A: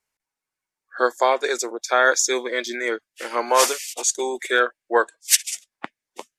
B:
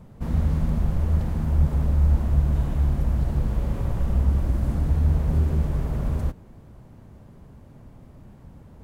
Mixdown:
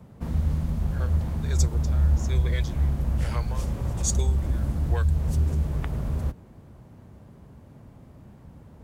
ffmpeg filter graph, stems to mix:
ffmpeg -i stem1.wav -i stem2.wav -filter_complex "[0:a]aeval=exprs='0.841*sin(PI/2*1.41*val(0)/0.841)':channel_layout=same,aeval=exprs='val(0)*pow(10,-28*(0.5-0.5*cos(2*PI*1.2*n/s))/20)':channel_layout=same,volume=-10dB[link_01];[1:a]highpass=49,volume=-0.5dB[link_02];[link_01][link_02]amix=inputs=2:normalize=0,acrossover=split=130|3000[link_03][link_04][link_05];[link_04]acompressor=threshold=-33dB:ratio=6[link_06];[link_03][link_06][link_05]amix=inputs=3:normalize=0" out.wav

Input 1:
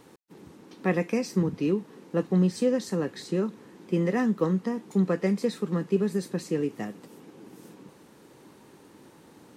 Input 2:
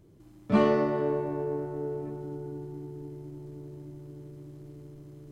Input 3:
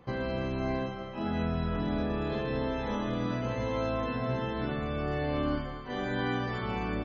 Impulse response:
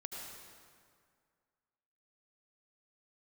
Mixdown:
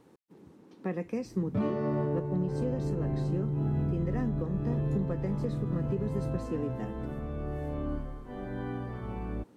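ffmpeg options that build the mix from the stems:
-filter_complex "[0:a]volume=-9dB[link_01];[1:a]highpass=54,asubboost=boost=11.5:cutoff=160,adelay=1050,volume=-2.5dB[link_02];[2:a]lowpass=frequency=1800:poles=1,lowshelf=frequency=61:gain=11.5,adelay=2400,volume=-9dB[link_03];[link_01][link_02][link_03]amix=inputs=3:normalize=0,tiltshelf=frequency=1200:gain=4.5,alimiter=limit=-21.5dB:level=0:latency=1:release=324"

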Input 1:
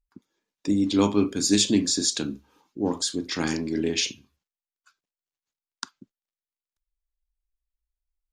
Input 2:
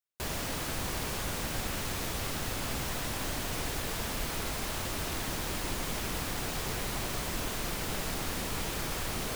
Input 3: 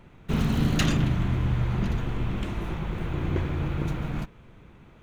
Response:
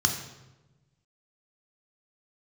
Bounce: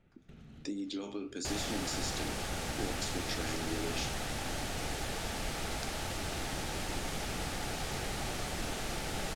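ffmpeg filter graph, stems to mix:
-filter_complex "[0:a]highpass=320,alimiter=limit=-17.5dB:level=0:latency=1,acompressor=threshold=-33dB:ratio=6,volume=1dB,asplit=2[link_01][link_02];[1:a]equalizer=frequency=870:width=2.9:gain=7,adelay=1250,volume=2dB[link_03];[2:a]alimiter=limit=-20.5dB:level=0:latency=1:release=393,acompressor=threshold=-36dB:ratio=3,volume=-11.5dB[link_04];[link_02]apad=whole_len=221635[link_05];[link_04][link_05]sidechaincompress=threshold=-44dB:ratio=8:attack=16:release=166[link_06];[link_01][link_03][link_06]amix=inputs=3:normalize=0,lowpass=9900,equalizer=frequency=1000:width_type=o:width=0.21:gain=-14,flanger=delay=9.4:depth=7.4:regen=-72:speed=1.3:shape=triangular"

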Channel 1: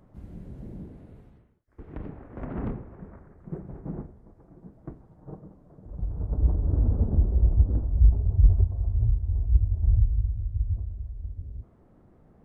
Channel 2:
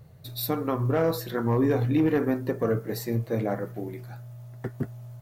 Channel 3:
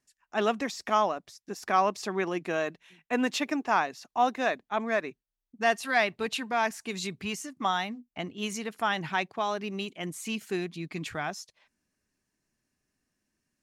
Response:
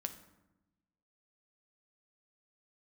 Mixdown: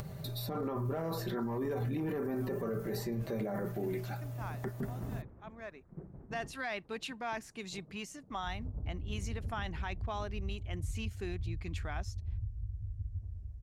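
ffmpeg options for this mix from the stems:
-filter_complex "[0:a]adynamicequalizer=threshold=0.0158:dfrequency=110:dqfactor=0.94:tfrequency=110:tqfactor=0.94:attack=5:release=100:ratio=0.375:range=4:mode=boostabove:tftype=bell,acompressor=threshold=-23dB:ratio=6,adelay=2450,volume=-12dB[link_01];[1:a]acompressor=mode=upward:threshold=-37dB:ratio=2.5,aecho=1:1:5.1:0.49,acrossover=split=1400|7500[link_02][link_03][link_04];[link_02]acompressor=threshold=-25dB:ratio=4[link_05];[link_03]acompressor=threshold=-49dB:ratio=4[link_06];[link_04]acompressor=threshold=-54dB:ratio=4[link_07];[link_05][link_06][link_07]amix=inputs=3:normalize=0,volume=2.5dB,asplit=2[link_08][link_09];[2:a]highshelf=frequency=9400:gain=-4.5,adelay=700,volume=-8.5dB[link_10];[link_09]apad=whole_len=631714[link_11];[link_10][link_11]sidechaincompress=threshold=-46dB:ratio=8:attack=41:release=1050[link_12];[link_01][link_08][link_12]amix=inputs=3:normalize=0,alimiter=level_in=4.5dB:limit=-24dB:level=0:latency=1:release=11,volume=-4.5dB"

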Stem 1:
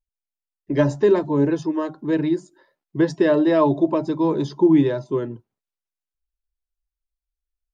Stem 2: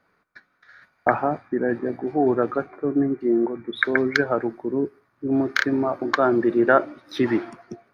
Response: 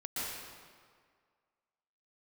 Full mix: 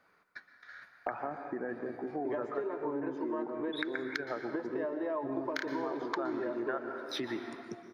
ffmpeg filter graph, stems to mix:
-filter_complex "[0:a]acrossover=split=300 2000:gain=0.0891 1 0.0708[link_01][link_02][link_03];[link_01][link_02][link_03]amix=inputs=3:normalize=0,acompressor=threshold=-26dB:ratio=6,adelay=1550,volume=-0.5dB,asplit=2[link_04][link_05];[link_05]volume=-10.5dB[link_06];[1:a]acompressor=threshold=-33dB:ratio=2,volume=-1.5dB,asplit=2[link_07][link_08];[link_08]volume=-11.5dB[link_09];[2:a]atrim=start_sample=2205[link_10];[link_06][link_09]amix=inputs=2:normalize=0[link_11];[link_11][link_10]afir=irnorm=-1:irlink=0[link_12];[link_04][link_07][link_12]amix=inputs=3:normalize=0,lowshelf=frequency=350:gain=-8,acompressor=threshold=-34dB:ratio=2.5"

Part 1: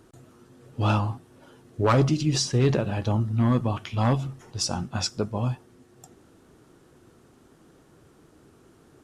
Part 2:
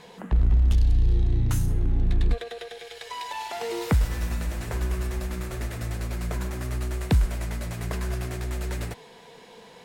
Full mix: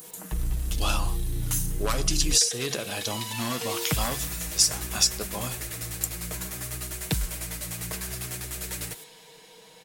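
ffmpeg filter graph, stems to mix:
ffmpeg -i stem1.wav -i stem2.wav -filter_complex "[0:a]aemphasis=mode=production:type=riaa,bandreject=frequency=890:width=12,acompressor=threshold=-26dB:ratio=6,volume=-1dB[link_01];[1:a]aecho=1:1:6.4:0.69,adynamicequalizer=threshold=0.00562:dfrequency=1700:dqfactor=0.7:tfrequency=1700:tqfactor=0.7:attack=5:release=100:ratio=0.375:range=2.5:mode=boostabove:tftype=highshelf,volume=-7.5dB[link_02];[link_01][link_02]amix=inputs=2:normalize=0,crystalizer=i=2.5:c=0" out.wav

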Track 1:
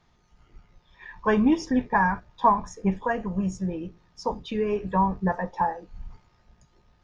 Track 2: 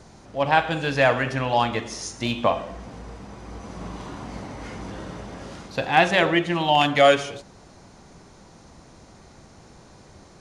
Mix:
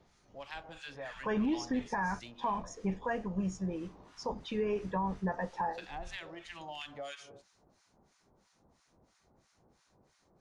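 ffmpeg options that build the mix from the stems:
ffmpeg -i stem1.wav -i stem2.wav -filter_complex "[0:a]equalizer=frequency=1100:width=1.5:gain=-3,volume=-4.5dB[link_01];[1:a]acrossover=split=1100[link_02][link_03];[link_02]aeval=exprs='val(0)*(1-1/2+1/2*cos(2*PI*3*n/s))':channel_layout=same[link_04];[link_03]aeval=exprs='val(0)*(1-1/2-1/2*cos(2*PI*3*n/s))':channel_layout=same[link_05];[link_04][link_05]amix=inputs=2:normalize=0,acrossover=split=570|3500[link_06][link_07][link_08];[link_06]acompressor=threshold=-36dB:ratio=4[link_09];[link_07]acompressor=threshold=-30dB:ratio=4[link_10];[link_08]acompressor=threshold=-42dB:ratio=4[link_11];[link_09][link_10][link_11]amix=inputs=3:normalize=0,adynamicequalizer=threshold=0.00355:dfrequency=5600:dqfactor=0.73:tfrequency=5600:tqfactor=0.73:attack=5:release=100:ratio=0.375:range=2.5:mode=boostabove:tftype=bell,volume=-14.5dB[link_12];[link_01][link_12]amix=inputs=2:normalize=0,lowshelf=frequency=220:gain=-4.5,alimiter=level_in=0.5dB:limit=-24dB:level=0:latency=1:release=37,volume=-0.5dB" out.wav

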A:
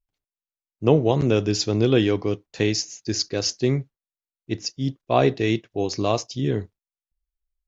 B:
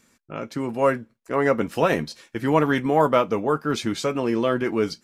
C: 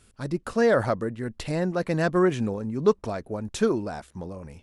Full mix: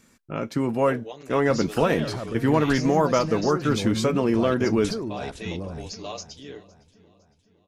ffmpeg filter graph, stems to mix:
ffmpeg -i stem1.wav -i stem2.wav -i stem3.wav -filter_complex "[0:a]highpass=720,equalizer=frequency=1100:width_type=o:width=2.2:gain=-5,aecho=1:1:6.8:0.92,volume=-15dB,asplit=2[link_01][link_02];[link_02]volume=-16.5dB[link_03];[1:a]acompressor=threshold=-22dB:ratio=2,volume=1dB[link_04];[2:a]acompressor=threshold=-28dB:ratio=6,adelay=1300,volume=-6.5dB,asplit=2[link_05][link_06];[link_06]volume=-6.5dB[link_07];[link_01][link_05]amix=inputs=2:normalize=0,dynaudnorm=framelen=540:gausssize=5:maxgain=8dB,alimiter=level_in=1dB:limit=-24dB:level=0:latency=1:release=14,volume=-1dB,volume=0dB[link_08];[link_03][link_07]amix=inputs=2:normalize=0,aecho=0:1:509|1018|1527|2036|2545|3054:1|0.46|0.212|0.0973|0.0448|0.0206[link_09];[link_04][link_08][link_09]amix=inputs=3:normalize=0,lowshelf=frequency=270:gain=5.5" out.wav

